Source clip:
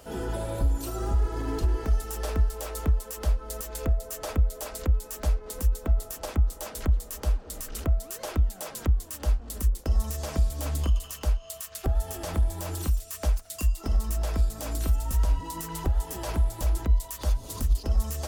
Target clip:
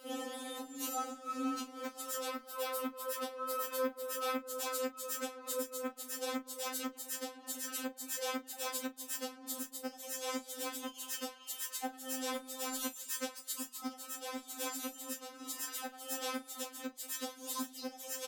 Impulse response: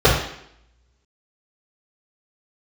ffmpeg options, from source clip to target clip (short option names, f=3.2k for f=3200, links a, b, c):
-filter_complex "[0:a]alimiter=limit=-23.5dB:level=0:latency=1:release=50,asplit=2[a][b];[b]adelay=34,volume=-12dB[c];[a][c]amix=inputs=2:normalize=0,asoftclip=type=tanh:threshold=-22.5dB,asettb=1/sr,asplit=3[d][e][f];[d]atrim=end=2.284[g];[e]atrim=start=2.28:end=4.38,asetpts=PTS-STARTPTS,afade=t=in:d=0.004:c=qsin,afade=t=out:st=2.096:d=0.004:c=qsin,equalizer=f=6.9k:t=o:w=0.56:g=-8.5[h];[f]atrim=start=4.376[i];[g][h]acrossfade=d=0.004:c1=hsin:c2=qsin[j];[j][i]acrossfade=d=0.004:c1=qsin:c2=hsin,aeval=exprs='sgn(val(0))*max(abs(val(0))-0.00106,0)':c=same,highpass=f=110:w=0.5412,highpass=f=110:w=1.3066,lowshelf=f=140:g=-6.5,afftfilt=real='re*3.46*eq(mod(b,12),0)':imag='im*3.46*eq(mod(b,12),0)':win_size=2048:overlap=0.75,volume=2.5dB"